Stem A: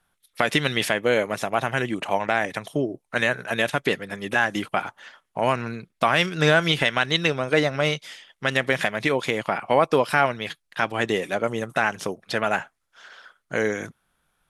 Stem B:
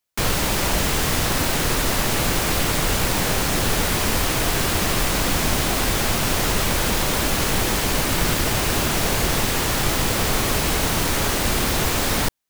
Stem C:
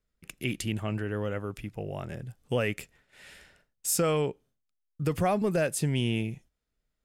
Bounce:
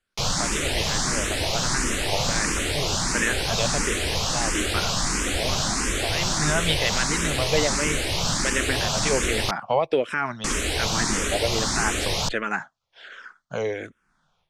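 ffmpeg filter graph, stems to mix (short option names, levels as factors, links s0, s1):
-filter_complex "[0:a]alimiter=limit=0.335:level=0:latency=1:release=57,dynaudnorm=f=150:g=3:m=5.01,asplit=2[s0][s1];[s1]afreqshift=-1.3[s2];[s0][s2]amix=inputs=2:normalize=1,volume=0.398[s3];[1:a]aemphasis=mode=production:type=50fm,asplit=2[s4][s5];[s5]afreqshift=1.5[s6];[s4][s6]amix=inputs=2:normalize=1,volume=0.794,asplit=3[s7][s8][s9];[s7]atrim=end=9.51,asetpts=PTS-STARTPTS,afade=t=out:st=9.506:d=0.004:c=hsin[s10];[s8]atrim=start=9.51:end=10.44,asetpts=PTS-STARTPTS,volume=0[s11];[s9]atrim=start=10.44,asetpts=PTS-STARTPTS,afade=t=in:d=0.004:c=hsin[s12];[s10][s11][s12]concat=n=3:v=0:a=1[s13];[2:a]volume=47.3,asoftclip=hard,volume=0.0211,volume=0.282,asplit=2[s14][s15];[s15]apad=whole_len=639324[s16];[s3][s16]sidechaincompress=threshold=0.00282:ratio=8:attack=16:release=390[s17];[s17][s13][s14]amix=inputs=3:normalize=0,lowpass=f=7300:w=0.5412,lowpass=f=7300:w=1.3066"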